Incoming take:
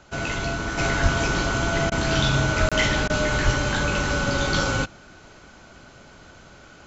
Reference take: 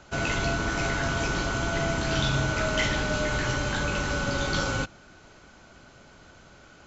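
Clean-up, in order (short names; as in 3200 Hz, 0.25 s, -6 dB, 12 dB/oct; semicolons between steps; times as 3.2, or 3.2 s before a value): de-plosive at 1.02/2.59/3.44; interpolate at 2.69, 26 ms; interpolate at 1.9/3.08, 16 ms; gain correction -4.5 dB, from 0.78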